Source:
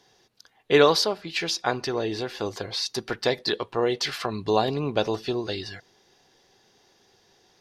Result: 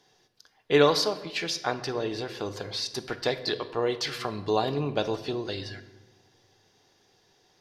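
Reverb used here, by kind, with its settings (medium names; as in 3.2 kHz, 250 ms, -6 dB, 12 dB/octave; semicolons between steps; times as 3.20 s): simulated room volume 660 m³, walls mixed, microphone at 0.45 m; trim -3.5 dB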